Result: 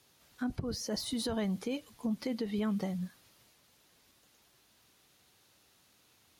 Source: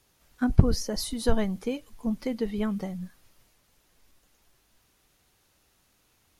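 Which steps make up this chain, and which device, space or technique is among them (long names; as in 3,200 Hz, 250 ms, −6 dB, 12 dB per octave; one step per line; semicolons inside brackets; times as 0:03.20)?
broadcast voice chain (high-pass filter 97 Hz 12 dB per octave; de-essing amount 75%; downward compressor 4 to 1, threshold −28 dBFS, peak gain reduction 13.5 dB; parametric band 3,900 Hz +4 dB 0.85 octaves; brickwall limiter −26 dBFS, peak gain reduction 9.5 dB)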